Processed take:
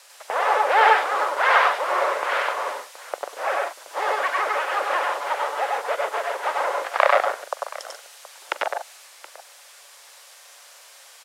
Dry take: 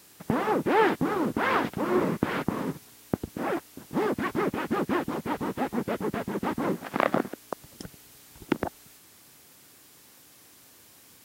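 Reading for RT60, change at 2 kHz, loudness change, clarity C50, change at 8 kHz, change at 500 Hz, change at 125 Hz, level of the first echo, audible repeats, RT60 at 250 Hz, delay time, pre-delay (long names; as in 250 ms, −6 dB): no reverb audible, +10.0 dB, +6.0 dB, no reverb audible, +7.5 dB, +4.0 dB, below −40 dB, −20.0 dB, 4, no reverb audible, 43 ms, no reverb audible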